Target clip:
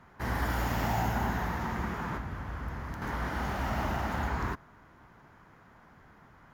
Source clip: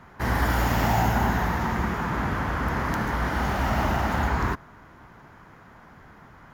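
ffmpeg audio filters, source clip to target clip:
-filter_complex "[0:a]asettb=1/sr,asplit=3[a][b][c];[a]atrim=end=2.174[d];[b]atrim=start=2.17:end=3.02,asetpts=PTS-STARTPTS,afade=t=in:d=0.004:c=qsin,afade=t=out:st=0.846:d=0.004:c=qsin,acrossover=split=130[e][f];[f]acompressor=threshold=-35dB:ratio=3[g];[e][g]amix=inputs=2:normalize=0[h];[c]atrim=start=3.016[i];[d][h]acrossfade=d=0.004:c1=hsin:c2=qsin[j];[j][i]acrossfade=d=0.004:c1=qsin:c2=hsin,volume=-7.5dB"

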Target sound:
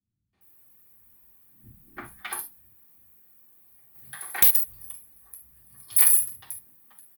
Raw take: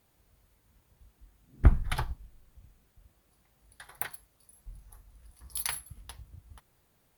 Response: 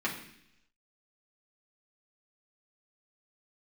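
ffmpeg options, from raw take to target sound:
-filter_complex "[0:a]aemphasis=mode=production:type=cd,bandreject=f=50:t=h:w=6,bandreject=f=100:t=h:w=6,bandreject=f=150:t=h:w=6,bandreject=f=200:t=h:w=6,acrossover=split=260|1000[a][b][c];[a]acompressor=threshold=-41dB:ratio=6[d];[b]alimiter=level_in=4dB:limit=-24dB:level=0:latency=1:release=476,volume=-4dB[e];[d][e][c]amix=inputs=3:normalize=0,acrossover=split=190|5500[f][g][h];[g]adelay=330[i];[h]adelay=410[j];[f][i][j]amix=inputs=3:normalize=0,aexciter=amount=7.5:drive=3.3:freq=9k,asplit=2[k][l];[l]aeval=exprs='sgn(val(0))*max(abs(val(0))-0.0299,0)':c=same,volume=-6dB[m];[k][m]amix=inputs=2:normalize=0[n];[1:a]atrim=start_sample=2205,atrim=end_sample=3528[o];[n][o]afir=irnorm=-1:irlink=0,asplit=3[p][q][r];[p]afade=t=out:st=3.94:d=0.02[s];[q]acontrast=85,afade=t=in:st=3.94:d=0.02,afade=t=out:st=4.92:d=0.02[t];[r]afade=t=in:st=4.92:d=0.02[u];[s][t][u]amix=inputs=3:normalize=0,volume=-8dB"

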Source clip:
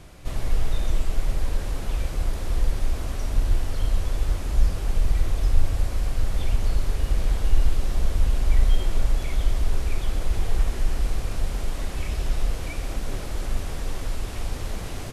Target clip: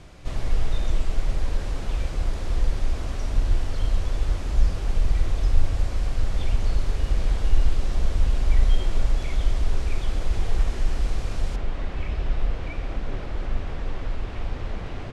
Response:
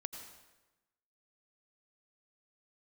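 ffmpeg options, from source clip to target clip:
-af "asetnsamples=n=441:p=0,asendcmd='11.56 lowpass f 2900',lowpass=7.1k"

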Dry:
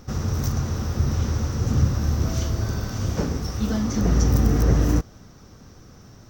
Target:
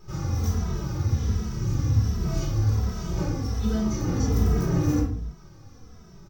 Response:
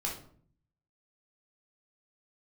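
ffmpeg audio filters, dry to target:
-filter_complex "[0:a]asettb=1/sr,asplit=3[a][b][c];[a]atrim=end=1.064[d];[b]atrim=start=1.06:end=2.24,asetpts=PTS-STARTPTS,afade=t=in:d=0.004:c=qsin,afade=t=out:st=1.176:d=0.004:c=qsin,equalizer=f=730:t=o:w=1.7:g=-5.5[e];[c]atrim=start=2.236[f];[d][e]acrossfade=d=0.004:c1=hsin:c2=qsin[g];[g][f]acrossfade=d=0.004:c1=qsin:c2=hsin[h];[1:a]atrim=start_sample=2205,afade=t=out:st=0.4:d=0.01,atrim=end_sample=18081[i];[h][i]afir=irnorm=-1:irlink=0,asplit=2[j][k];[k]adelay=2.7,afreqshift=-1.3[l];[j][l]amix=inputs=2:normalize=1,volume=-4dB"

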